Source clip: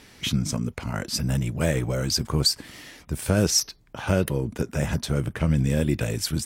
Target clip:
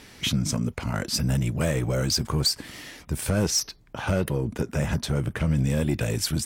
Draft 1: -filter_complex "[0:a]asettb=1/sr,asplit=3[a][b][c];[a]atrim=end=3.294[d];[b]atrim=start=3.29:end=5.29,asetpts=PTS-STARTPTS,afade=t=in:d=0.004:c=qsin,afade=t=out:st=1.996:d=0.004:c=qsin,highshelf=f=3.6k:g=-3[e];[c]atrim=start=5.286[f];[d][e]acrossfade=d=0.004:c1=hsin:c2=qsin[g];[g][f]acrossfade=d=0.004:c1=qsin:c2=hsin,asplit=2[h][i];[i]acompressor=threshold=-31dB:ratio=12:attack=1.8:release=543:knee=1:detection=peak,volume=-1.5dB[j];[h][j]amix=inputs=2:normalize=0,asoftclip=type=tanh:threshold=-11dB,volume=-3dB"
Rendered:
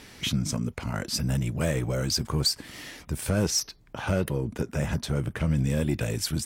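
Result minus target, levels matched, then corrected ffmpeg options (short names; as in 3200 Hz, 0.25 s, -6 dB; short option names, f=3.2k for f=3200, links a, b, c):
compressor: peak gain reduction +11 dB
-filter_complex "[0:a]asettb=1/sr,asplit=3[a][b][c];[a]atrim=end=3.294[d];[b]atrim=start=3.29:end=5.29,asetpts=PTS-STARTPTS,afade=t=in:d=0.004:c=qsin,afade=t=out:st=1.996:d=0.004:c=qsin,highshelf=f=3.6k:g=-3[e];[c]atrim=start=5.286[f];[d][e]acrossfade=d=0.004:c1=hsin:c2=qsin[g];[g][f]acrossfade=d=0.004:c1=qsin:c2=hsin,asplit=2[h][i];[i]acompressor=threshold=-19dB:ratio=12:attack=1.8:release=543:knee=1:detection=peak,volume=-1.5dB[j];[h][j]amix=inputs=2:normalize=0,asoftclip=type=tanh:threshold=-11dB,volume=-3dB"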